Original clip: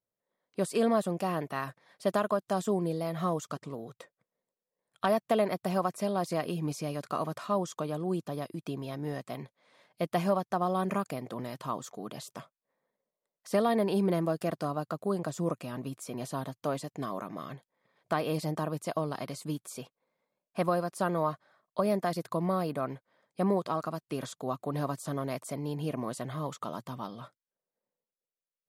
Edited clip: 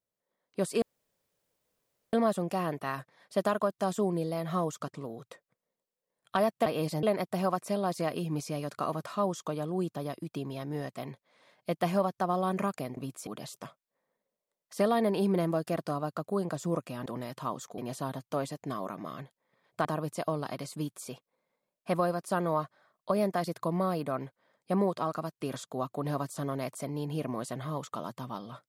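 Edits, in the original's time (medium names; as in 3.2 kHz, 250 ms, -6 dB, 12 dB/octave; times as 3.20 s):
0.82 s: insert room tone 1.31 s
11.29–12.01 s: swap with 15.80–16.10 s
18.17–18.54 s: move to 5.35 s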